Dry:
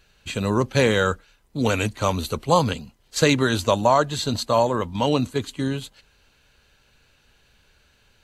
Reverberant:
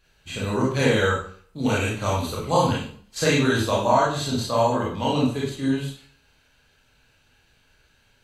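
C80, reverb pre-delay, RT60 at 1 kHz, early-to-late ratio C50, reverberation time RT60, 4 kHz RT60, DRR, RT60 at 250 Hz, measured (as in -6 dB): 7.5 dB, 24 ms, 0.50 s, 2.5 dB, 0.50 s, 0.45 s, -6.0 dB, 0.50 s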